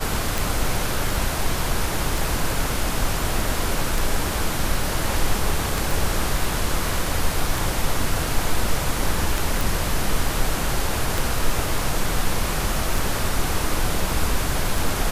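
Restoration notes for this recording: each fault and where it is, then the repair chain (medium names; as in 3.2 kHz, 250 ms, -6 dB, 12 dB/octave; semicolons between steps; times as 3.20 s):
tick 33 1/3 rpm
5.91 s: pop
9.61 s: pop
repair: de-click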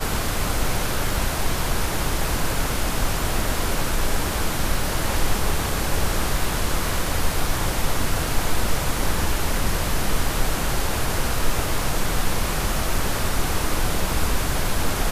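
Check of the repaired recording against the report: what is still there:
nothing left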